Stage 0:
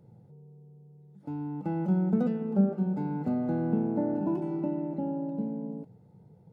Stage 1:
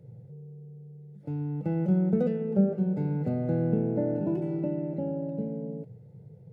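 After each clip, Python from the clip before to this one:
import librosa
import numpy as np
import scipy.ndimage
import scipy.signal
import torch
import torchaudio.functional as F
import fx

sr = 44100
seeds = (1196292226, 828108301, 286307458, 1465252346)

y = fx.graphic_eq(x, sr, hz=(125, 250, 500, 1000, 2000), db=(12, -6, 10, -11, 6))
y = y * librosa.db_to_amplitude(-1.0)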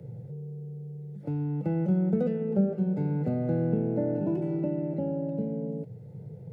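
y = fx.band_squash(x, sr, depth_pct=40)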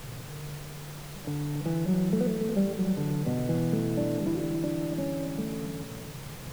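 y = fx.dmg_noise_colour(x, sr, seeds[0], colour='pink', level_db=-43.0)
y = y + 10.0 ** (-9.0 / 20.0) * np.pad(y, (int(282 * sr / 1000.0), 0))[:len(y)]
y = y * librosa.db_to_amplitude(-1.5)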